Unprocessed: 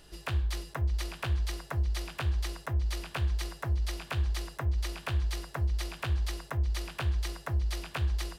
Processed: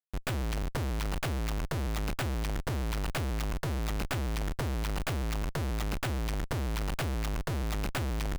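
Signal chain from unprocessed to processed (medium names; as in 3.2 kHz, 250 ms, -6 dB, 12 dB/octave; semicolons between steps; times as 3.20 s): gate -45 dBFS, range -7 dB; Schmitt trigger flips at -39 dBFS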